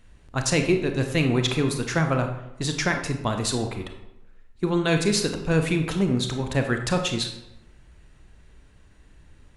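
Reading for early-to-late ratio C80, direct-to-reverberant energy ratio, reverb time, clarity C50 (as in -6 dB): 9.5 dB, 5.0 dB, 0.90 s, 7.0 dB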